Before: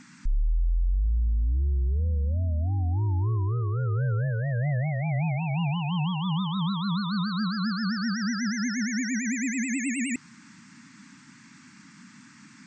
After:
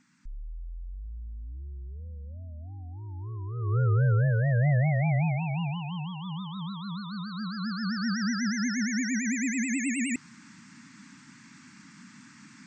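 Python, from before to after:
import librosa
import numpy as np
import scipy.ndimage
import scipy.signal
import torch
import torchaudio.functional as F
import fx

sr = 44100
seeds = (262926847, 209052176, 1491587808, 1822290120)

y = fx.gain(x, sr, db=fx.line((3.01, -15.0), (3.53, -8.5), (3.76, 3.0), (5.01, 3.0), (6.08, -8.5), (7.25, -8.5), (8.13, -0.5)))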